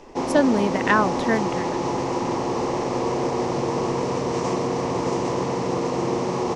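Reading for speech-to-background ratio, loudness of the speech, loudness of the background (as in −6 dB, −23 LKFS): 2.5 dB, −22.5 LKFS, −25.0 LKFS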